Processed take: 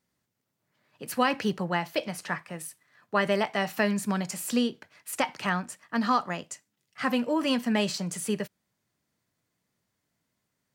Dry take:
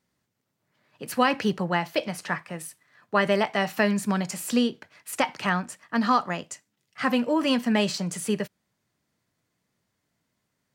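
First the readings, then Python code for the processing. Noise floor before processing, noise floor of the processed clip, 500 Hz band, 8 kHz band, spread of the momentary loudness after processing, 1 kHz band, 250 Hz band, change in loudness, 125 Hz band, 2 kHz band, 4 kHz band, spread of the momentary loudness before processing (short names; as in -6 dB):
-78 dBFS, -81 dBFS, -3.0 dB, -1.0 dB, 13 LU, -3.0 dB, -3.0 dB, -3.0 dB, -3.0 dB, -3.0 dB, -2.5 dB, 14 LU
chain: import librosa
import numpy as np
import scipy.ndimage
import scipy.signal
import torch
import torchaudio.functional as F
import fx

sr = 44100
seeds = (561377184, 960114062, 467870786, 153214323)

y = fx.high_shelf(x, sr, hz=8000.0, db=4.0)
y = y * librosa.db_to_amplitude(-3.0)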